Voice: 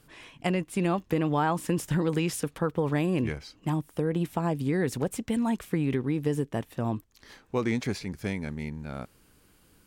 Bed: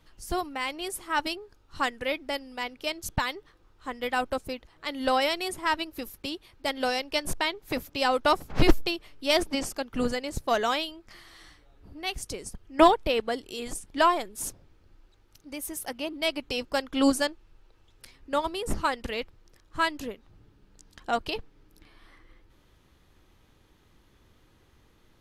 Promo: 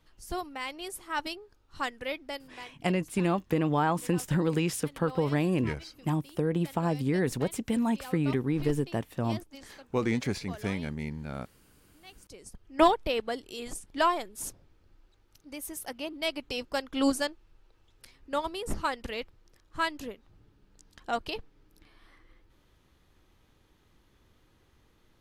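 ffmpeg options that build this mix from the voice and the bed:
ffmpeg -i stem1.wav -i stem2.wav -filter_complex "[0:a]adelay=2400,volume=-0.5dB[link_01];[1:a]volume=11dB,afade=type=out:start_time=2.22:duration=0.59:silence=0.188365,afade=type=in:start_time=12.23:duration=0.49:silence=0.158489[link_02];[link_01][link_02]amix=inputs=2:normalize=0" out.wav

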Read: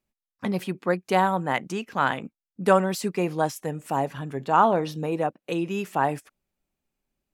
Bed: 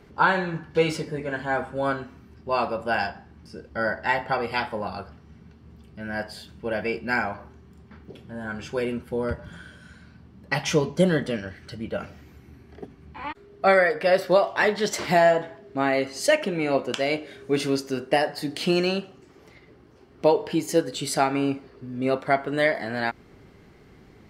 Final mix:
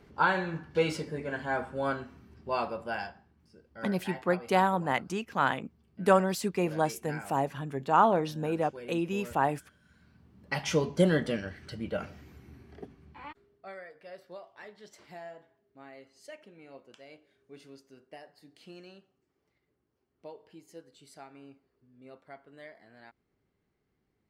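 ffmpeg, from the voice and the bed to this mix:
ffmpeg -i stem1.wav -i stem2.wav -filter_complex "[0:a]adelay=3400,volume=-3.5dB[link_01];[1:a]volume=8.5dB,afade=type=out:start_time=2.43:duration=0.93:silence=0.251189,afade=type=in:start_time=9.83:duration=1.24:silence=0.199526,afade=type=out:start_time=12.61:duration=1.04:silence=0.0668344[link_02];[link_01][link_02]amix=inputs=2:normalize=0" out.wav

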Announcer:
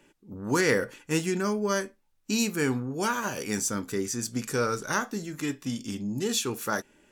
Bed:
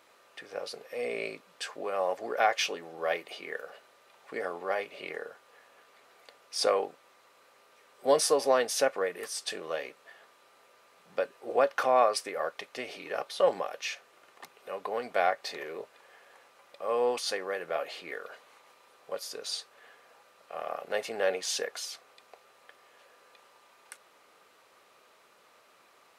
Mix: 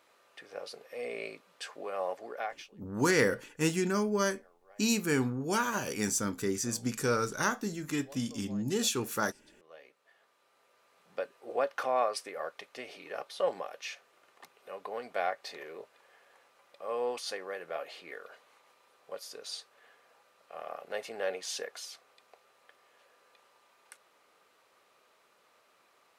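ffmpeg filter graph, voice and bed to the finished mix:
ffmpeg -i stem1.wav -i stem2.wav -filter_complex "[0:a]adelay=2500,volume=-2dB[link_01];[1:a]volume=18.5dB,afade=type=out:start_time=2.07:duration=0.63:silence=0.0630957,afade=type=in:start_time=9.53:duration=1.48:silence=0.0707946[link_02];[link_01][link_02]amix=inputs=2:normalize=0" out.wav

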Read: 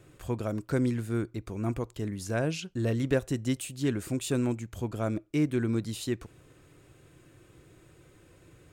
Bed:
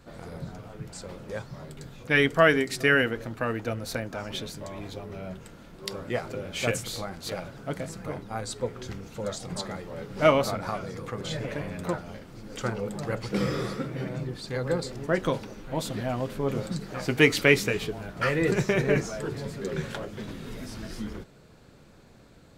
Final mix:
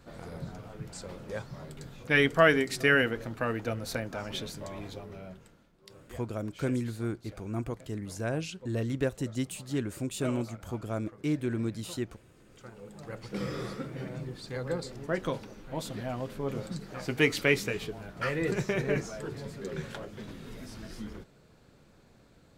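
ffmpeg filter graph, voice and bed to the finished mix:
ffmpeg -i stem1.wav -i stem2.wav -filter_complex "[0:a]adelay=5900,volume=-3dB[link_01];[1:a]volume=11.5dB,afade=type=out:start_time=4.75:duration=0.97:silence=0.141254,afade=type=in:start_time=12.7:duration=0.98:silence=0.211349[link_02];[link_01][link_02]amix=inputs=2:normalize=0" out.wav

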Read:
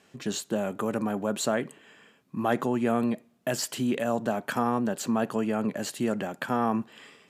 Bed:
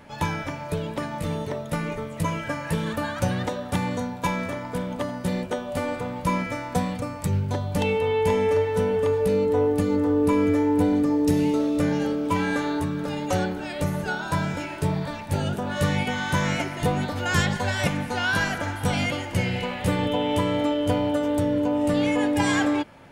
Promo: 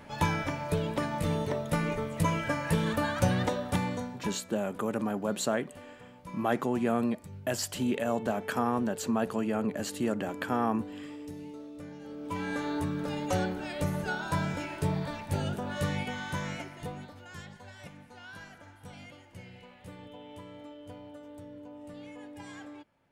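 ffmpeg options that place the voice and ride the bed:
ffmpeg -i stem1.wav -i stem2.wav -filter_complex "[0:a]adelay=4000,volume=-2.5dB[link_01];[1:a]volume=15dB,afade=type=out:start_time=3.53:duration=0.88:silence=0.1,afade=type=in:start_time=12.02:duration=0.86:silence=0.149624,afade=type=out:start_time=15.19:duration=2.09:silence=0.11885[link_02];[link_01][link_02]amix=inputs=2:normalize=0" out.wav

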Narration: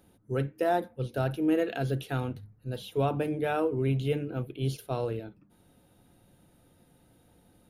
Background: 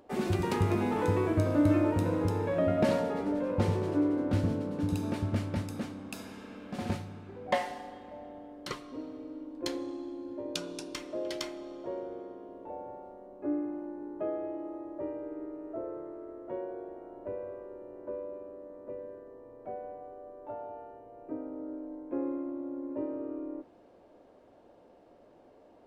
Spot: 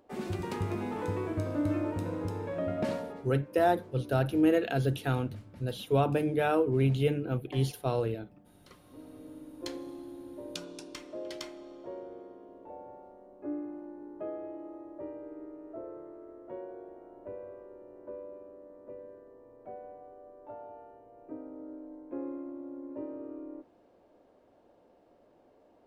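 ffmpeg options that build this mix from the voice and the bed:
ffmpeg -i stem1.wav -i stem2.wav -filter_complex "[0:a]adelay=2950,volume=1.5dB[link_01];[1:a]volume=8.5dB,afade=type=out:start_time=2.91:duration=0.42:silence=0.223872,afade=type=in:start_time=8.74:duration=0.53:silence=0.199526[link_02];[link_01][link_02]amix=inputs=2:normalize=0" out.wav

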